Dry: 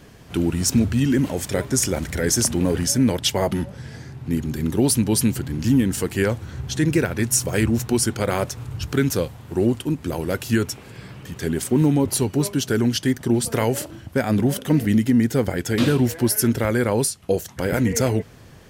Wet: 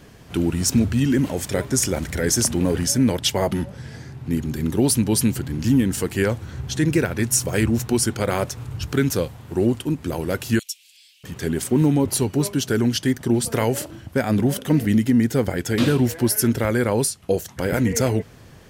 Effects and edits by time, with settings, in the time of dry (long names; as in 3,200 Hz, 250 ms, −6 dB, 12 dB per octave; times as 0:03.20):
0:10.59–0:11.24: Butterworth high-pass 2,800 Hz